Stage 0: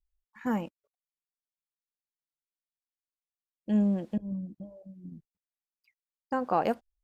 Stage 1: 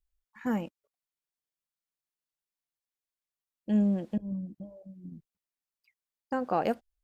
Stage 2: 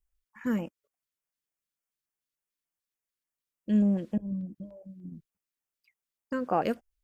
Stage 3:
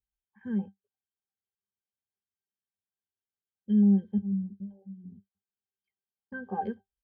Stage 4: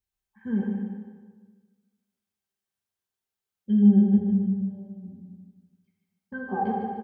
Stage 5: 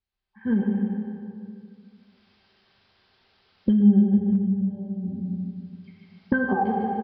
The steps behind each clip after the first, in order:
dynamic equaliser 1,000 Hz, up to −5 dB, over −45 dBFS, Q 2.5
auto-filter notch square 3.4 Hz 790–4,000 Hz; level +1.5 dB
resonances in every octave G, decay 0.12 s; level +5 dB
on a send: repeating echo 150 ms, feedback 36%, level −6 dB; on the sum: dense smooth reverb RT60 1.4 s, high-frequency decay 0.8×, DRR −0.5 dB; level +2.5 dB
camcorder AGC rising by 16 dB per second; single-tap delay 122 ms −16.5 dB; downsampling to 11,025 Hz

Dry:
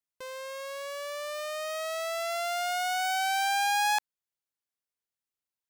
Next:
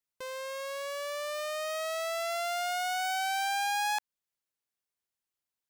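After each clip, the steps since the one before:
downward compressor 2 to 1, threshold −33 dBFS, peak gain reduction 5.5 dB
level +1 dB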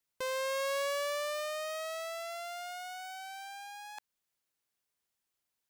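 compressor whose output falls as the input rises −37 dBFS, ratio −0.5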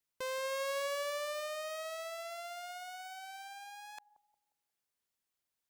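bucket-brigade delay 178 ms, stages 1,024, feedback 36%, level −15 dB
level −3 dB

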